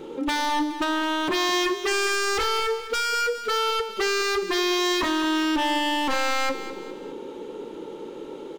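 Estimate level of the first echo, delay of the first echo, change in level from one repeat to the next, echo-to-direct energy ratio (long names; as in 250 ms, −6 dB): −12.0 dB, 207 ms, −7.5 dB, −11.0 dB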